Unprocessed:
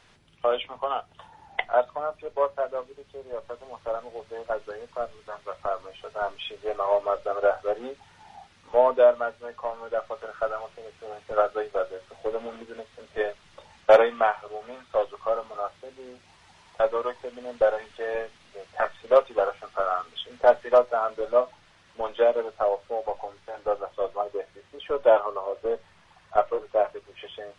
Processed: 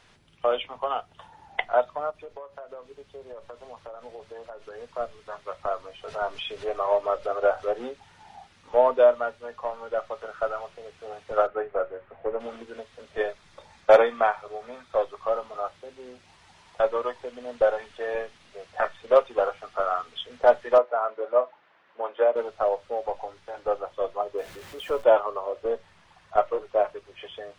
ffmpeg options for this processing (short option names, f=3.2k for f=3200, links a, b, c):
-filter_complex "[0:a]asplit=3[a][b][c];[a]afade=t=out:st=2.1:d=0.02[d];[b]acompressor=threshold=-36dB:ratio=20:attack=3.2:release=140:knee=1:detection=peak,afade=t=in:st=2.1:d=0.02,afade=t=out:st=4.77:d=0.02[e];[c]afade=t=in:st=4.77:d=0.02[f];[d][e][f]amix=inputs=3:normalize=0,asettb=1/sr,asplit=3[g][h][i];[g]atrim=end=6.084[j];[h]atrim=start=6.08:end=7.89,asetpts=PTS-STARTPTS,afade=t=in:d=0.004:c=qsin,afade=t=out:st=1.806:d=0.004:c=qsin,acompressor=mode=upward:threshold=-28dB:ratio=2.5:attack=3.2:release=140:knee=2.83:detection=peak[k];[i]atrim=start=7.886[l];[j][k]acrossfade=d=0.004:c1=hsin:c2=qsin[m];[m][l]acrossfade=d=0.004:c1=qsin:c2=hsin,asplit=3[n][o][p];[n]afade=t=out:st=11.46:d=0.02[q];[o]lowpass=f=2.2k:w=0.5412,lowpass=f=2.2k:w=1.3066,afade=t=in:st=11.46:d=0.02,afade=t=out:st=12.39:d=0.02[r];[p]afade=t=in:st=12.39:d=0.02[s];[q][r][s]amix=inputs=3:normalize=0,asettb=1/sr,asplit=3[t][u][v];[t]atrim=end=13.284[w];[u]atrim=start=13.28:end=15.23,asetpts=PTS-STARTPTS,afade=t=in:d=0.004:c=qsin,afade=t=out:st=1.946:d=0.004:c=qsin,bandreject=f=2.9k:w=8.8[x];[v]atrim=start=15.226[y];[w][x]acrossfade=d=0.004:c1=hsin:c2=qsin[z];[z][y]acrossfade=d=0.004:c1=qsin:c2=hsin,asettb=1/sr,asplit=3[aa][ab][ac];[aa]atrim=end=20.784[ad];[ab]atrim=start=20.78:end=22.36,asetpts=PTS-STARTPTS,afade=t=in:d=0.004:c=qsin,afade=t=out:st=1.576:d=0.004:c=qsin,highpass=370,lowpass=2k[ae];[ac]atrim=start=22.356[af];[ad][ae]acrossfade=d=0.004:c1=hsin:c2=qsin[ag];[ag][af]acrossfade=d=0.004:c1=qsin:c2=hsin,asettb=1/sr,asplit=3[ah][ai][aj];[ah]atrim=end=24.384[ak];[ai]atrim=start=24.38:end=25.04,asetpts=PTS-STARTPTS,afade=t=in:d=0.004:c=qsin,afade=t=out:st=0.656:d=0.004:c=qsin,aeval=exprs='val(0)+0.5*0.00891*sgn(val(0))':c=same[al];[aj]atrim=start=25.036[am];[ak][al]acrossfade=d=0.004:c1=hsin:c2=qsin[an];[an][am]acrossfade=d=0.004:c1=qsin:c2=hsin"